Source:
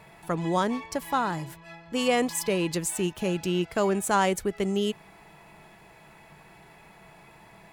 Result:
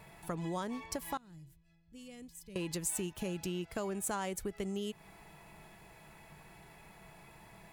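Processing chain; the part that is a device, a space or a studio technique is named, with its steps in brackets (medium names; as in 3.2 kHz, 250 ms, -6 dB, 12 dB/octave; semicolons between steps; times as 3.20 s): 1.17–2.56 s: amplifier tone stack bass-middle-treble 10-0-1; ASMR close-microphone chain (bass shelf 110 Hz +8 dB; compression 4:1, threshold -30 dBFS, peak gain reduction 10.5 dB; treble shelf 6.7 kHz +7.5 dB); trim -5.5 dB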